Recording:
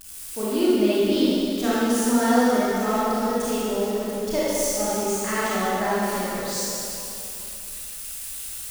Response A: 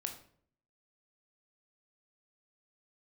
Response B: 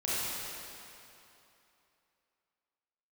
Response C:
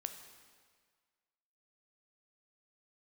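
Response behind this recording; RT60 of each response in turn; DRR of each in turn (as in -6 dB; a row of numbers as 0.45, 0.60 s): B; 0.55, 2.9, 1.7 s; 4.0, -10.0, 6.5 dB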